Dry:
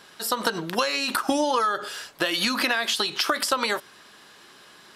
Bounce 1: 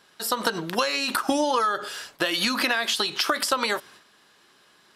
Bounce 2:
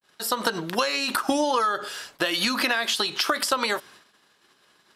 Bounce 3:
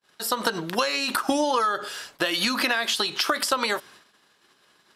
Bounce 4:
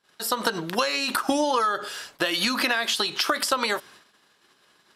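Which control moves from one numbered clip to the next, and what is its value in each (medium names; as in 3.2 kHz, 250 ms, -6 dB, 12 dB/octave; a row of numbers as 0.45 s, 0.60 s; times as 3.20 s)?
gate, range: -8 dB, -60 dB, -38 dB, -24 dB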